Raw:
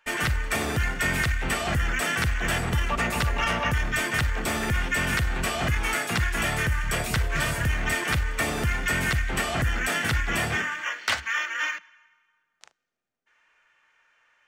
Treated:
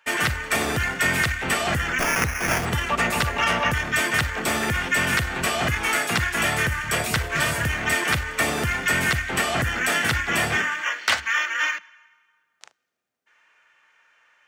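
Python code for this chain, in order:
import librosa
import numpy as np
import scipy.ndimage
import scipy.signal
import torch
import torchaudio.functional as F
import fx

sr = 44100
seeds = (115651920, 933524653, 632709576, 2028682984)

y = scipy.signal.sosfilt(scipy.signal.butter(4, 61.0, 'highpass', fs=sr, output='sos'), x)
y = fx.low_shelf(y, sr, hz=190.0, db=-6.0)
y = fx.sample_hold(y, sr, seeds[0], rate_hz=4000.0, jitter_pct=0, at=(1.98, 2.64), fade=0.02)
y = F.gain(torch.from_numpy(y), 4.5).numpy()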